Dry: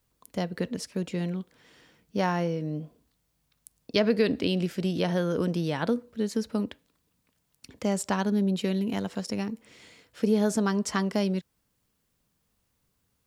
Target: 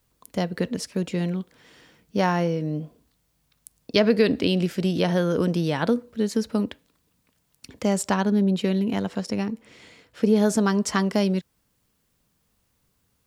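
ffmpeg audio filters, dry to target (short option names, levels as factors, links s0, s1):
-filter_complex "[0:a]asettb=1/sr,asplit=3[s0][s1][s2];[s0]atrim=end=8.144[s3];[s1]atrim=start=8.14:end=10.36,asetpts=PTS-STARTPTS,afade=t=in:d=0.004:c=qsin,afade=t=out:st=2.216:d=0.004:c=qsin,highshelf=f=4900:g=-6.5[s4];[s2]atrim=start=10.356[s5];[s3][s4]acrossfade=d=0.004:c1=hsin:c2=qsin[s6];[s6][s5]acrossfade=d=0.004:c1=qsin:c2=hsin,volume=1.68"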